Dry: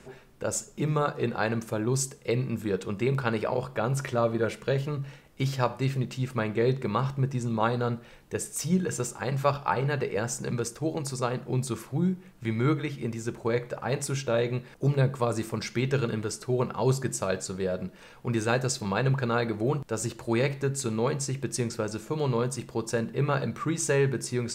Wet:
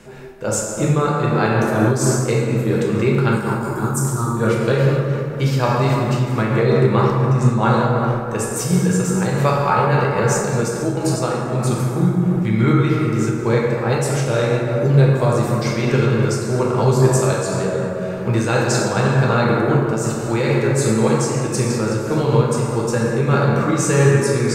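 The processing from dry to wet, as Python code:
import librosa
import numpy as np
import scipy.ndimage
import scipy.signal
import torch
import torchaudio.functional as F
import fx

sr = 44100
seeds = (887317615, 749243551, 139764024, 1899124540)

y = fx.curve_eq(x, sr, hz=(350.0, 590.0, 910.0, 1300.0, 2100.0, 7700.0), db=(0, -23, -2, -3, -25, 11), at=(3.31, 4.37))
y = fx.rev_plate(y, sr, seeds[0], rt60_s=3.1, hf_ratio=0.4, predelay_ms=0, drr_db=-4.5)
y = fx.am_noise(y, sr, seeds[1], hz=5.7, depth_pct=60)
y = y * 10.0 ** (8.0 / 20.0)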